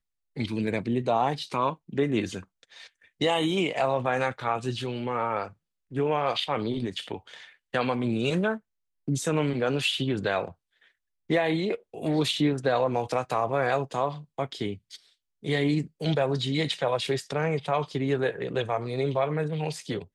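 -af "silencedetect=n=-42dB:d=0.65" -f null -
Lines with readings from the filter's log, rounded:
silence_start: 10.52
silence_end: 11.30 | silence_duration: 0.78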